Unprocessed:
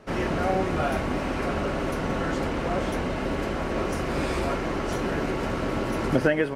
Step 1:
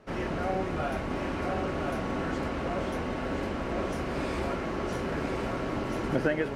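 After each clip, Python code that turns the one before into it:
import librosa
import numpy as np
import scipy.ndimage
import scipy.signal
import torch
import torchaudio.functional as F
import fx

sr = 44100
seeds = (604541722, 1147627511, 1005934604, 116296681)

y = fx.high_shelf(x, sr, hz=6700.0, db=-5.0)
y = y + 10.0 ** (-5.0 / 20.0) * np.pad(y, (int(1024 * sr / 1000.0), 0))[:len(y)]
y = F.gain(torch.from_numpy(y), -5.5).numpy()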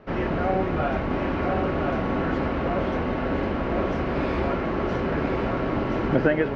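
y = fx.air_absorb(x, sr, metres=230.0)
y = F.gain(torch.from_numpy(y), 7.0).numpy()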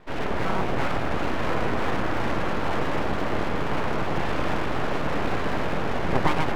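y = fx.echo_alternate(x, sr, ms=107, hz=900.0, feedback_pct=84, wet_db=-6.0)
y = np.abs(y)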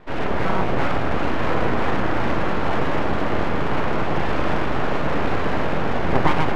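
y = fx.lowpass(x, sr, hz=4000.0, slope=6)
y = fx.doubler(y, sr, ms=38.0, db=-12)
y = F.gain(torch.from_numpy(y), 4.0).numpy()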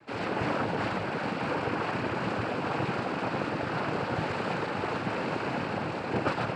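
y = fx.rider(x, sr, range_db=10, speed_s=2.0)
y = fx.noise_vocoder(y, sr, seeds[0], bands=8)
y = F.gain(torch.from_numpy(y), -7.0).numpy()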